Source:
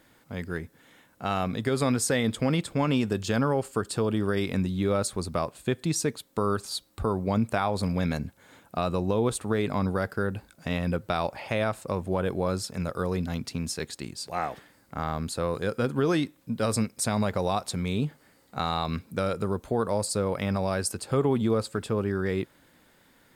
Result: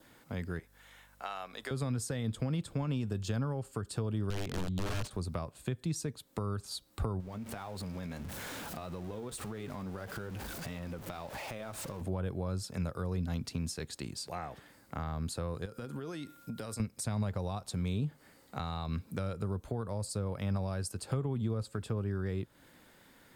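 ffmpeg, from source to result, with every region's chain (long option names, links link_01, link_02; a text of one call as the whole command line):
ffmpeg -i in.wav -filter_complex "[0:a]asettb=1/sr,asplit=3[link_01][link_02][link_03];[link_01]atrim=end=0.594[link_04];[link_02]atrim=start=0.59:end=1.71,asetpts=PTS-STARTPTS,afade=type=in:duration=0.004:curve=qsin,afade=type=out:start_time=1.116:duration=0.004:curve=qsin,highpass=690,aeval=exprs='val(0)+0.000631*(sin(2*PI*50*n/s)+sin(2*PI*2*50*n/s)/2+sin(2*PI*3*50*n/s)/3+sin(2*PI*4*50*n/s)/4+sin(2*PI*5*50*n/s)/5)':channel_layout=same[link_05];[link_03]atrim=start=1.706[link_06];[link_04][link_05]acrossfade=duration=0.004:curve1=hsin:curve2=qsin[link_07];[link_07][link_06]acrossfade=duration=0.004:curve1=qsin:curve2=hsin,asettb=1/sr,asplit=3[link_08][link_09][link_10];[link_08]atrim=end=4.304[link_11];[link_09]atrim=start=4.3:end=5.11,asetpts=PTS-STARTPTS,afade=type=in:duration=0.004:curve=qsin,afade=type=out:start_time=0.806:duration=0.004:curve=qsin,aeval=exprs='(mod(13.3*val(0)+1,2)-1)/13.3':channel_layout=same,adynamicsmooth=sensitivity=6.5:basefreq=2100[link_12];[link_10]atrim=start=5.106[link_13];[link_11][link_12]acrossfade=duration=0.004:curve1=hsin:curve2=qsin[link_14];[link_14][link_13]acrossfade=duration=0.004:curve1=qsin:curve2=hsin,asettb=1/sr,asplit=3[link_15][link_16][link_17];[link_15]atrim=end=7.204[link_18];[link_16]atrim=start=7.2:end=12.01,asetpts=PTS-STARTPTS,afade=type=in:duration=0.004:curve=qsin,afade=type=out:start_time=4.806:duration=0.004:curve=qsin,aeval=exprs='val(0)+0.5*0.0251*sgn(val(0))':channel_layout=same,flanger=delay=0.5:depth=4.5:regen=-65:speed=1.7:shape=triangular,acompressor=threshold=-37dB:ratio=6:attack=3.2:release=140:knee=1:detection=peak[link_19];[link_17]atrim=start=12.006[link_20];[link_18][link_19]acrossfade=duration=0.004:curve1=hsin:curve2=qsin[link_21];[link_21][link_20]acrossfade=duration=0.004:curve1=qsin:curve2=hsin,asettb=1/sr,asplit=3[link_22][link_23][link_24];[link_22]atrim=end=15.654[link_25];[link_23]atrim=start=15.65:end=16.8,asetpts=PTS-STARTPTS,afade=type=in:duration=0.004:curve=qsin,afade=type=out:start_time=1.146:duration=0.004:curve=qsin,highshelf=frequency=5000:gain=7,acompressor=threshold=-35dB:ratio=10:attack=3.2:release=140:knee=1:detection=peak,aeval=exprs='val(0)+0.00126*sin(2*PI*1400*n/s)':channel_layout=same[link_26];[link_24]atrim=start=16.796[link_27];[link_25][link_26]acrossfade=duration=0.004:curve1=hsin:curve2=qsin[link_28];[link_28][link_27]acrossfade=duration=0.004:curve1=qsin:curve2=hsin,adynamicequalizer=threshold=0.00251:dfrequency=2100:dqfactor=3.6:tfrequency=2100:tqfactor=3.6:attack=5:release=100:ratio=0.375:range=2.5:mode=cutabove:tftype=bell,acrossover=split=140[link_29][link_30];[link_30]acompressor=threshold=-38dB:ratio=5[link_31];[link_29][link_31]amix=inputs=2:normalize=0" out.wav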